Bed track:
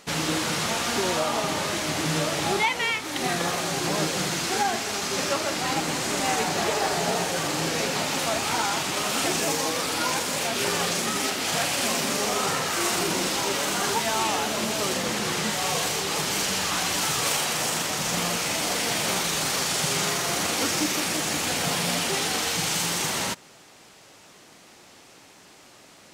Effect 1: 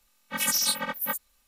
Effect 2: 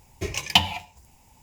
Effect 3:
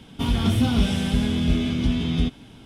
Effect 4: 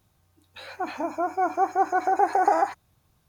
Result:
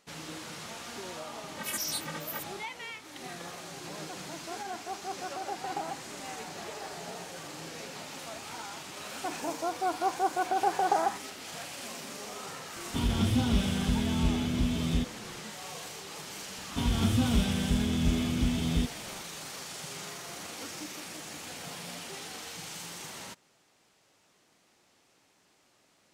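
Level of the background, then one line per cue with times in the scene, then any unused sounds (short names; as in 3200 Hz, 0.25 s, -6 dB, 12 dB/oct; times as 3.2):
bed track -16 dB
1.26 add 1 -9 dB
3.29 add 4 -16 dB
8.44 add 4 -6 dB
12.75 add 3 -6.5 dB
16.57 add 3 -6 dB
not used: 2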